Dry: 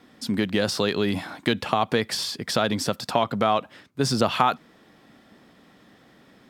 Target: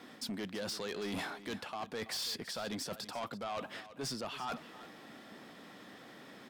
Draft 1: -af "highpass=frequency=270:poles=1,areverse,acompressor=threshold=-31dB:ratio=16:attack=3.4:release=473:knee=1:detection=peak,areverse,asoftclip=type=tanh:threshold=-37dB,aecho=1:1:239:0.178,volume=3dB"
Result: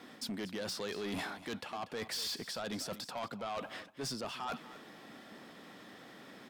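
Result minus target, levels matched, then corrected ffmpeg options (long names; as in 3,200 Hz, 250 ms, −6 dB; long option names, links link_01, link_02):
echo 92 ms early
-af "highpass=frequency=270:poles=1,areverse,acompressor=threshold=-31dB:ratio=16:attack=3.4:release=473:knee=1:detection=peak,areverse,asoftclip=type=tanh:threshold=-37dB,aecho=1:1:331:0.178,volume=3dB"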